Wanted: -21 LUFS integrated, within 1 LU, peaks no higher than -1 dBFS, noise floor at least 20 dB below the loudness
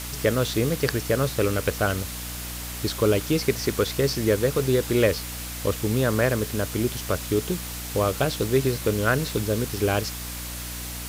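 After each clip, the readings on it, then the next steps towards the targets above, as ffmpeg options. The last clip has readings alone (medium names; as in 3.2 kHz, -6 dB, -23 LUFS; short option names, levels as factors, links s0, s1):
hum 60 Hz; highest harmonic 300 Hz; hum level -35 dBFS; noise floor -34 dBFS; noise floor target -45 dBFS; loudness -25.0 LUFS; peak level -7.0 dBFS; loudness target -21.0 LUFS
-> -af "bandreject=f=60:t=h:w=6,bandreject=f=120:t=h:w=6,bandreject=f=180:t=h:w=6,bandreject=f=240:t=h:w=6,bandreject=f=300:t=h:w=6"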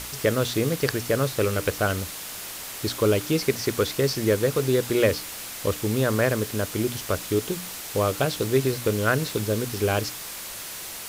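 hum not found; noise floor -37 dBFS; noise floor target -45 dBFS
-> -af "afftdn=nr=8:nf=-37"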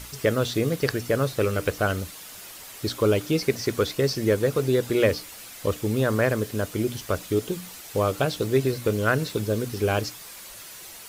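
noise floor -42 dBFS; noise floor target -45 dBFS
-> -af "afftdn=nr=6:nf=-42"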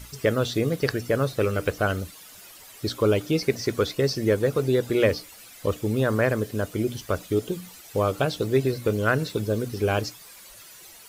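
noise floor -47 dBFS; loudness -25.5 LUFS; peak level -8.0 dBFS; loudness target -21.0 LUFS
-> -af "volume=1.68"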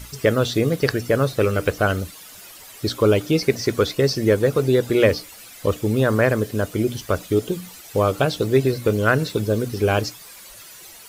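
loudness -21.0 LUFS; peak level -3.5 dBFS; noise floor -43 dBFS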